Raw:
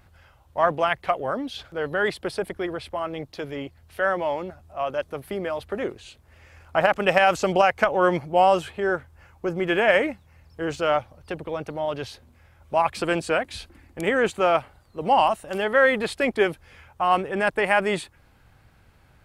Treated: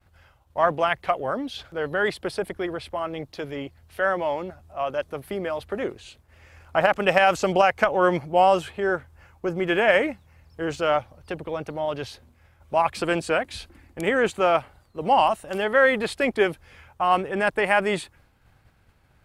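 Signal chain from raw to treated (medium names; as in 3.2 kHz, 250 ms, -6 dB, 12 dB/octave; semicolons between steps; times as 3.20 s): expander -51 dBFS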